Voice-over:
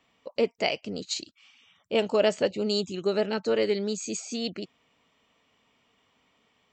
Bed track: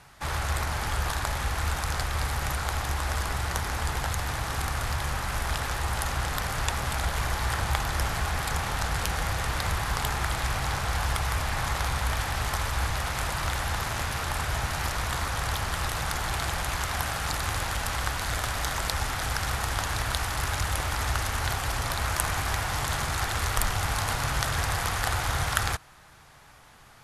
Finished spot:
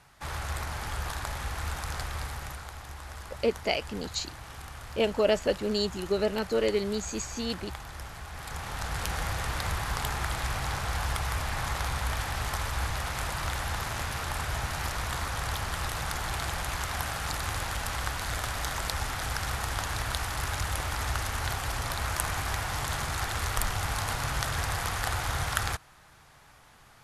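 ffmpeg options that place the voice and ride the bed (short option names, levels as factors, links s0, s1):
-filter_complex "[0:a]adelay=3050,volume=0.841[s0];[1:a]volume=1.78,afade=t=out:st=2.07:d=0.65:silence=0.398107,afade=t=in:st=8.29:d=0.85:silence=0.298538[s1];[s0][s1]amix=inputs=2:normalize=0"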